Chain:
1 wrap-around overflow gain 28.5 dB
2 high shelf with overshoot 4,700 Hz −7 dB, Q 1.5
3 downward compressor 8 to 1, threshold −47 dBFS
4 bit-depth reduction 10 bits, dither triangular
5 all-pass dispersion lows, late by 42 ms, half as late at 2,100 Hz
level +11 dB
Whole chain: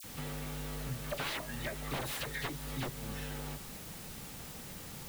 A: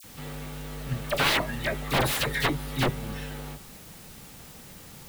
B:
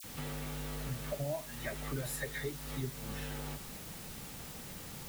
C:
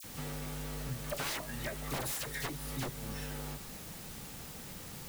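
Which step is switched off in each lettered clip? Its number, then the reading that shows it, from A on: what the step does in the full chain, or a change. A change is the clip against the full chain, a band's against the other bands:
3, average gain reduction 5.5 dB
1, 4 kHz band −4.0 dB
2, 8 kHz band +3.0 dB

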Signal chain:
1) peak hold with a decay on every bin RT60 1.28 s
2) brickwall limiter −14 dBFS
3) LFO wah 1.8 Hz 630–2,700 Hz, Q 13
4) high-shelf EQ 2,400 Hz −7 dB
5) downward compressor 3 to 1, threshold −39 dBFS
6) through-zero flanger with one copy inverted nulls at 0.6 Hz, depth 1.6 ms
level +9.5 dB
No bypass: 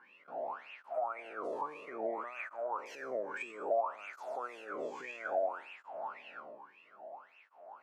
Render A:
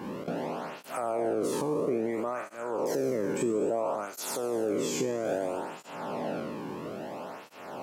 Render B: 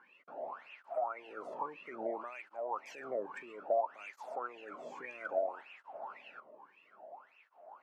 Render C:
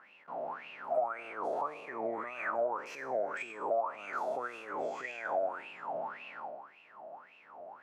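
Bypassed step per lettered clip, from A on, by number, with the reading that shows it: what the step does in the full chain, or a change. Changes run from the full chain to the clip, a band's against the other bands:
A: 3, 250 Hz band +14.0 dB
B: 1, 2 kHz band −2.0 dB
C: 6, change in integrated loudness +3.0 LU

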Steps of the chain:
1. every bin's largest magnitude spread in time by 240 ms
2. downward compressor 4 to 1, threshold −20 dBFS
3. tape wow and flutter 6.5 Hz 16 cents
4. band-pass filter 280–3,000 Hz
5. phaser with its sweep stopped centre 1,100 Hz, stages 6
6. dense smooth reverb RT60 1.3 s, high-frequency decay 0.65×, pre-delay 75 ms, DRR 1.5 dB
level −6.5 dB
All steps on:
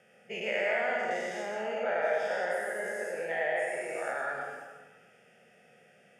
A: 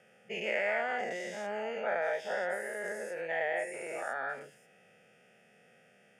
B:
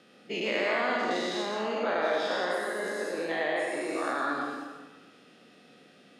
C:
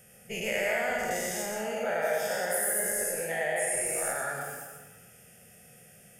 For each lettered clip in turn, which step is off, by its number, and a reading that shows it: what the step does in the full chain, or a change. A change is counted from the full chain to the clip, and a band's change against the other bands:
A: 6, change in integrated loudness −2.5 LU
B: 5, 250 Hz band +8.5 dB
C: 4, 8 kHz band +18.0 dB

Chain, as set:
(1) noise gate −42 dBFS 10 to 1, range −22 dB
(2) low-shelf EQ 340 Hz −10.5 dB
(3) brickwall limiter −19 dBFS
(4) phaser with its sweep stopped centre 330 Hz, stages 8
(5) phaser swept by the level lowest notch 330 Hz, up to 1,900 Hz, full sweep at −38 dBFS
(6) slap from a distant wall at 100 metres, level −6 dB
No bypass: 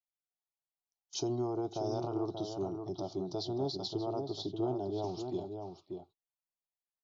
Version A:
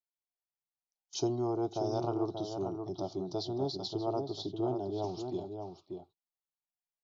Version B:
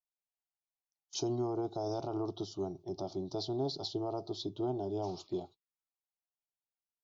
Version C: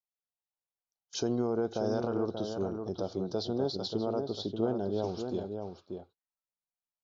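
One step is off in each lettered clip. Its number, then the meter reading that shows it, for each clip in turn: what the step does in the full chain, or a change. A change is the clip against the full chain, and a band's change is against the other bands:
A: 3, change in momentary loudness spread +1 LU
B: 6, echo-to-direct ratio −8.0 dB to none audible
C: 4, 500 Hz band +2.5 dB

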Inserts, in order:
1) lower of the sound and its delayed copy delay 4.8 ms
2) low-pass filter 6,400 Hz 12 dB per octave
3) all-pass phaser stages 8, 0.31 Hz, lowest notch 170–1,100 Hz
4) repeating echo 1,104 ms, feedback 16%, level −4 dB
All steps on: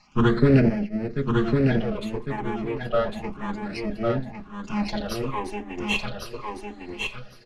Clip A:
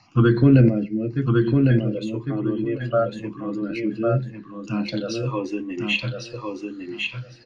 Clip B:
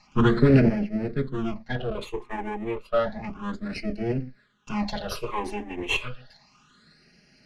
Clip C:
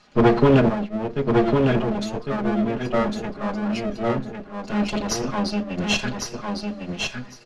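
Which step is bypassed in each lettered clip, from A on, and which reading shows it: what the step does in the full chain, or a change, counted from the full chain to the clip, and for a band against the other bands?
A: 1, change in integrated loudness +3.5 LU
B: 4, change in crest factor +1.5 dB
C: 3, change in momentary loudness spread −4 LU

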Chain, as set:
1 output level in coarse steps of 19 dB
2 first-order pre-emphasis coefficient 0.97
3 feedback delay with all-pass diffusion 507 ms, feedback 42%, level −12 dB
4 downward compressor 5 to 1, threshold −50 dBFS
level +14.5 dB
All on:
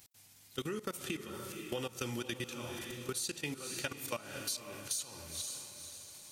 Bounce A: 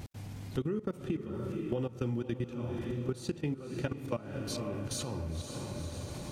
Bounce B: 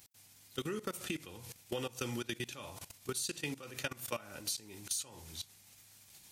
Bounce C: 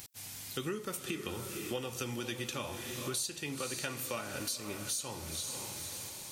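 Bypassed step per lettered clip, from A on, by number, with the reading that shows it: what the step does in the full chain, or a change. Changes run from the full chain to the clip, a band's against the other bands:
2, 125 Hz band +14.0 dB
3, change in momentary loudness spread +10 LU
1, change in crest factor −3.0 dB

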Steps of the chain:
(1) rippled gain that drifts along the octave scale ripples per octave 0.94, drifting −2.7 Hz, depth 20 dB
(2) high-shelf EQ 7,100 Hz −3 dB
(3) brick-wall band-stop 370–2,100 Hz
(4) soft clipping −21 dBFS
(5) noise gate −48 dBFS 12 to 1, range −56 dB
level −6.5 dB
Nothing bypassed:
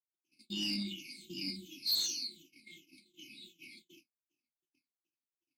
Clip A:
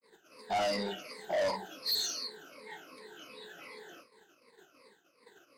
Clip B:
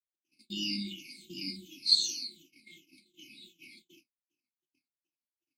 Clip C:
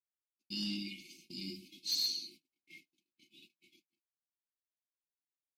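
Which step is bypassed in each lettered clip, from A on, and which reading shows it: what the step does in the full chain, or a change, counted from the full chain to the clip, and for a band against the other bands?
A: 3, 500 Hz band +24.0 dB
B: 4, distortion level −6 dB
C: 1, 8 kHz band −2.0 dB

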